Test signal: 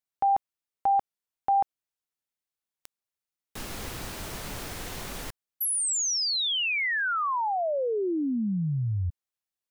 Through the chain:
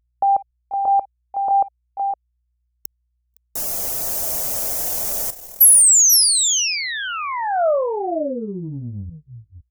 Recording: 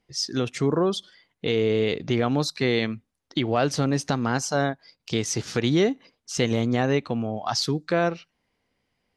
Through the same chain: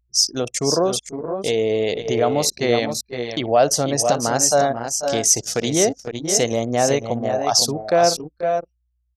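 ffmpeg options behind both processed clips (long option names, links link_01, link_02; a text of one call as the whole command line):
ffmpeg -i in.wav -filter_complex "[0:a]equalizer=frequency=630:width=1.6:gain=14,aeval=exprs='val(0)+0.00251*(sin(2*PI*60*n/s)+sin(2*PI*2*60*n/s)/2+sin(2*PI*3*60*n/s)/3+sin(2*PI*4*60*n/s)/4+sin(2*PI*5*60*n/s)/5)':channel_layout=same,aexciter=amount=2.7:drive=7.1:freq=5500,highshelf=frequency=3300:gain=10.5,afftfilt=real='re*gte(hypot(re,im),0.0178)':imag='im*gte(hypot(re,im),0.0178)':win_size=1024:overlap=0.75,asplit=2[link_01][link_02];[link_02]aecho=0:1:58|487|512:0.133|0.237|0.422[link_03];[link_01][link_03]amix=inputs=2:normalize=0,anlmdn=398,volume=-3dB" out.wav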